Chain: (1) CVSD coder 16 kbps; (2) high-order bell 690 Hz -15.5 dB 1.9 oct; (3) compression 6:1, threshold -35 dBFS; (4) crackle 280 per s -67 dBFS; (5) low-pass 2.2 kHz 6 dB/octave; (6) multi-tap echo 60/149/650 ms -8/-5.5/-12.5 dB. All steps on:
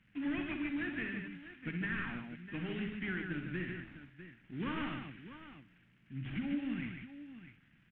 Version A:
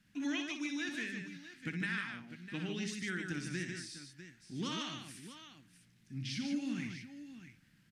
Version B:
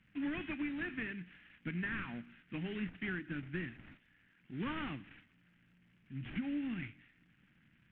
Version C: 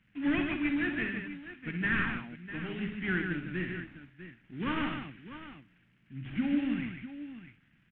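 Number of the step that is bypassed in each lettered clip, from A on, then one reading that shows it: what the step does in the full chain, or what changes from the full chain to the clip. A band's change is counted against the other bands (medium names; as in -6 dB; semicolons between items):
1, crest factor change +2.5 dB; 6, echo-to-direct -3.0 dB to none; 3, mean gain reduction 3.0 dB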